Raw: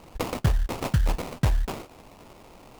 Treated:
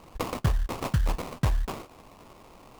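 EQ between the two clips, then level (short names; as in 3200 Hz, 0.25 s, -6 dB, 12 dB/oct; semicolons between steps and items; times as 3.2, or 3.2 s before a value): bell 1100 Hz +6 dB 0.24 oct; -2.5 dB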